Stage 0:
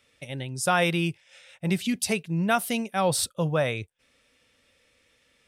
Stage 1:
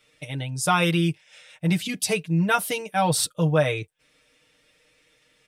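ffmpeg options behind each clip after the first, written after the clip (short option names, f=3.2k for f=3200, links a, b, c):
-af "aecho=1:1:6.5:0.92"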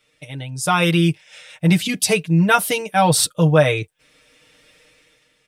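-af "dynaudnorm=f=240:g=7:m=15dB,volume=-1dB"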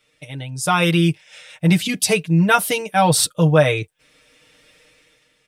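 -af anull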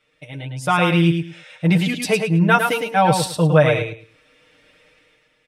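-filter_complex "[0:a]bass=f=250:g=-2,treble=f=4k:g=-11,asplit=2[a][b];[b]aecho=0:1:107|214|321:0.531|0.111|0.0234[c];[a][c]amix=inputs=2:normalize=0"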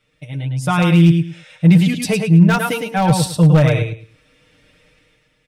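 -filter_complex "[0:a]asplit=2[a][b];[b]alimiter=limit=-9dB:level=0:latency=1:release=42,volume=0dB[c];[a][c]amix=inputs=2:normalize=0,aeval=exprs='0.708*(abs(mod(val(0)/0.708+3,4)-2)-1)':c=same,bass=f=250:g=11,treble=f=4k:g=4,volume=-7.5dB"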